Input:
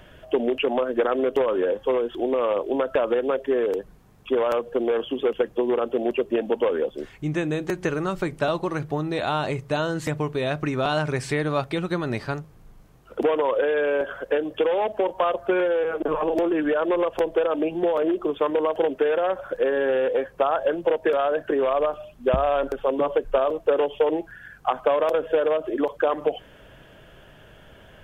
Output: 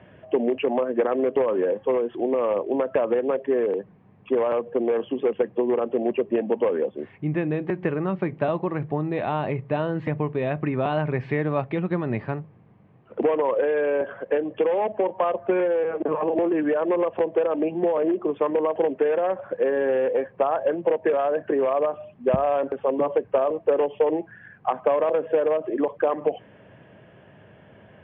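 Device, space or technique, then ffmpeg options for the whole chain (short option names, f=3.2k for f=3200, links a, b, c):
bass cabinet: -af "highpass=f=90:w=0.5412,highpass=f=90:w=1.3066,equalizer=f=110:t=q:w=4:g=3,equalizer=f=200:t=q:w=4:g=5,equalizer=f=1.4k:t=q:w=4:g=-8,lowpass=f=2.4k:w=0.5412,lowpass=f=2.4k:w=1.3066"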